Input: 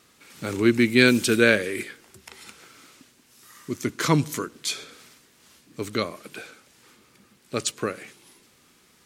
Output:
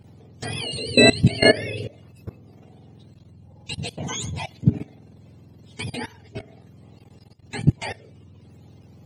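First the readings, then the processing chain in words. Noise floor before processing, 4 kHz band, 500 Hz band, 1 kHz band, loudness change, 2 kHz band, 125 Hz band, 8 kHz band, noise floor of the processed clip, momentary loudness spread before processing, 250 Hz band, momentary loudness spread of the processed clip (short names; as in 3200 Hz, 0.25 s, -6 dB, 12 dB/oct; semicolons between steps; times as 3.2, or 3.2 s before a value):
-59 dBFS, +5.0 dB, +1.0 dB, -0.5 dB, +1.5 dB, -1.0 dB, +6.5 dB, -1.5 dB, -51 dBFS, 19 LU, -1.5 dB, 22 LU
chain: spectrum mirrored in octaves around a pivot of 1000 Hz; level quantiser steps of 18 dB; gain +6.5 dB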